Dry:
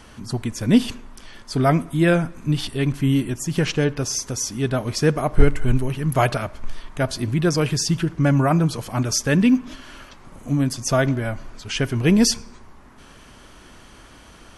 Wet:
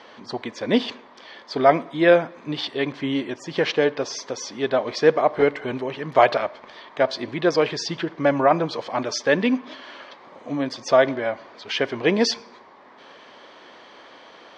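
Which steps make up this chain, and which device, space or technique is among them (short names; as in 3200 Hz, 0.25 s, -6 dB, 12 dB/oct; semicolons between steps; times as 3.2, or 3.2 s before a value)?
phone earpiece (speaker cabinet 470–4100 Hz, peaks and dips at 520 Hz +4 dB, 1400 Hz -7 dB, 2700 Hz -7 dB); gain +5.5 dB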